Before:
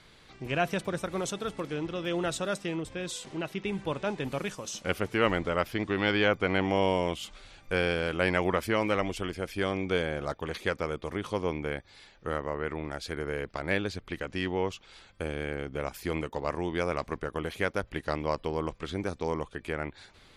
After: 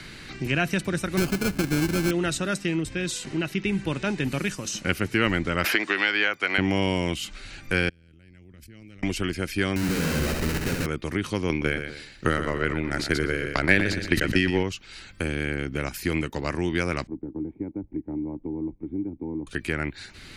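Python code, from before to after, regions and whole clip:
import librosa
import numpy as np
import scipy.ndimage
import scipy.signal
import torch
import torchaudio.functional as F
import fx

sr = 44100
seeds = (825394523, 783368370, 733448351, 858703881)

y = fx.chain(x, sr, fx.halfwave_hold(),
    fx.high_shelf(hz=3100.0, db=-9.5),
    fx.sample_hold(seeds[0], rate_hz=1900.0, jitter_pct=0), at=(1.17, 2.11))
y = fx.chain(y, sr, fx.highpass(hz=610.0, slope=12),
    fx.band_squash(depth_pct=100), at=(5.64, 6.58))
y = fx.chain(y, sr, fx.tone_stack(knobs='10-0-1'),
    fx.level_steps(step_db=21),
    fx.transient(attack_db=6, sustain_db=-11), at=(7.89, 9.03))
y = fx.chain(y, sr, fx.lowpass(hz=1700.0, slope=12),
    fx.schmitt(flips_db=-41.0),
    fx.room_flutter(wall_m=11.5, rt60_s=1.0), at=(9.76, 10.86))
y = fx.chain(y, sr, fx.transient(attack_db=10, sustain_db=-7),
    fx.echo_feedback(ms=120, feedback_pct=29, wet_db=-11),
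    fx.sustainer(db_per_s=74.0), at=(11.49, 14.63))
y = fx.chain(y, sr, fx.dead_time(dead_ms=0.072),
    fx.formant_cascade(vowel='u'),
    fx.band_squash(depth_pct=40), at=(17.07, 19.47))
y = fx.band_shelf(y, sr, hz=720.0, db=-9.0, octaves=1.7)
y = fx.notch(y, sr, hz=3400.0, q=9.0)
y = fx.band_squash(y, sr, depth_pct=40)
y = y * 10.0 ** (7.0 / 20.0)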